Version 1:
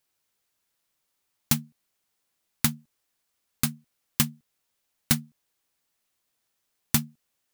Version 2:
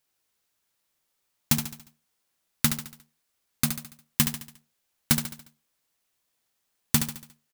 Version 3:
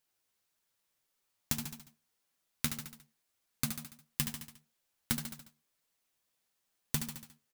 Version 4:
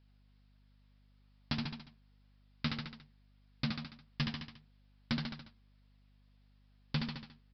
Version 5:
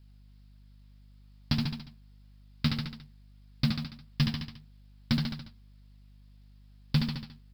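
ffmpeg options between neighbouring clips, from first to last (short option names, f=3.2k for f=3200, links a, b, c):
-filter_complex "[0:a]acrusher=bits=2:mode=log:mix=0:aa=0.000001,asplit=2[a][b];[b]aecho=0:1:71|142|213|284|355:0.398|0.183|0.0842|0.0388|0.0178[c];[a][c]amix=inputs=2:normalize=0"
-af "acompressor=threshold=-25dB:ratio=5,flanger=delay=3.8:depth=9.2:regen=45:speed=1.7:shape=triangular"
-af "aeval=exprs='val(0)+0.000316*(sin(2*PI*50*n/s)+sin(2*PI*2*50*n/s)/2+sin(2*PI*3*50*n/s)/3+sin(2*PI*4*50*n/s)/4+sin(2*PI*5*50*n/s)/5)':c=same,aresample=11025,asoftclip=type=tanh:threshold=-31dB,aresample=44100,volume=5.5dB"
-af "acrusher=bits=8:mode=log:mix=0:aa=0.000001,bass=f=250:g=9,treble=f=4k:g=8,volume=2dB"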